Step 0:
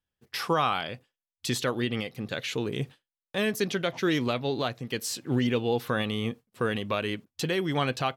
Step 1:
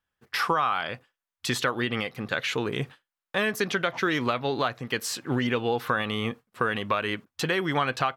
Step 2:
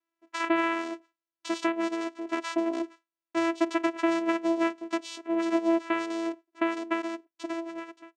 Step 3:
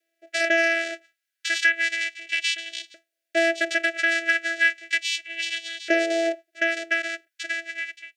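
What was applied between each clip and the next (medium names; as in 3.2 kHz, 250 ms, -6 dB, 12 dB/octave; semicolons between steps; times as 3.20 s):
peaking EQ 1.3 kHz +11 dB 1.8 oct; compression 6:1, threshold -21 dBFS, peak gain reduction 9 dB
fade out at the end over 1.57 s; vocoder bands 4, saw 332 Hz
sine folder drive 7 dB, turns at -12.5 dBFS; LFO high-pass saw up 0.34 Hz 540–3700 Hz; Chebyshev band-stop 650–1500 Hz, order 4; trim +1 dB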